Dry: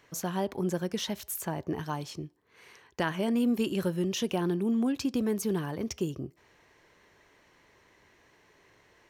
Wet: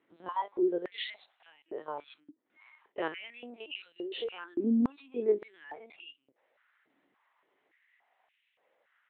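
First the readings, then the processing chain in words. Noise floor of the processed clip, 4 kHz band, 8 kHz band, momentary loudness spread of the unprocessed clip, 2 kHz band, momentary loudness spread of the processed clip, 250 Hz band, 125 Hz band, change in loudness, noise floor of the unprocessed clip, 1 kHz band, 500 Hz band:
-78 dBFS, -4.0 dB, under -40 dB, 9 LU, -4.0 dB, 19 LU, -5.5 dB, -17.5 dB, -3.5 dB, -64 dBFS, -2.0 dB, -1.5 dB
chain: spectrogram pixelated in time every 50 ms; spectral noise reduction 13 dB; in parallel at +0.5 dB: compression 8:1, threshold -38 dBFS, peak gain reduction 14 dB; on the sum: LPC vocoder at 8 kHz pitch kept; step-sequenced high-pass 3.5 Hz 280–2700 Hz; trim -5 dB

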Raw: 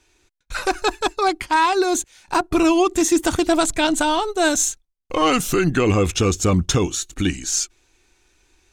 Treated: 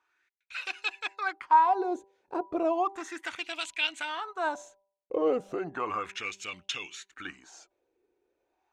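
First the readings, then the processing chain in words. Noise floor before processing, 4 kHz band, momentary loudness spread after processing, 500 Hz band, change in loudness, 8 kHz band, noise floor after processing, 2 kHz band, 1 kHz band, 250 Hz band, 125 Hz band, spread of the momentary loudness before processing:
-71 dBFS, -11.5 dB, 14 LU, -12.0 dB, -11.0 dB, -25.5 dB, -81 dBFS, -9.5 dB, -7.0 dB, -18.0 dB, -32.0 dB, 7 LU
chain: wah-wah 0.34 Hz 440–2800 Hz, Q 4.1; de-hum 196.1 Hz, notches 5

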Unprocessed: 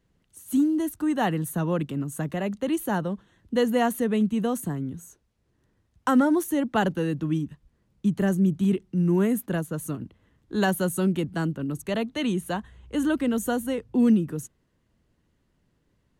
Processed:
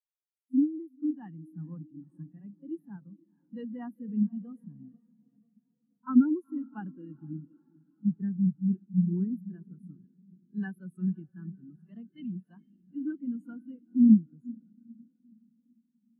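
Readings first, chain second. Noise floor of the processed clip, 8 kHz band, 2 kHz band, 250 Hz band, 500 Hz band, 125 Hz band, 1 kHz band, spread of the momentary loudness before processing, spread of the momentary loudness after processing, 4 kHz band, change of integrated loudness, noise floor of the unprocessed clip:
-77 dBFS, under -40 dB, under -20 dB, -4.0 dB, -21.5 dB, -7.0 dB, -20.0 dB, 11 LU, 23 LU, under -30 dB, -4.0 dB, -70 dBFS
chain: FFT filter 270 Hz 0 dB, 600 Hz -8 dB, 1.1 kHz +3 dB; echo that smears into a reverb 465 ms, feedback 73%, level -10 dB; vibrato 1.6 Hz 36 cents; reverse echo 39 ms -16 dB; spectral contrast expander 2.5:1

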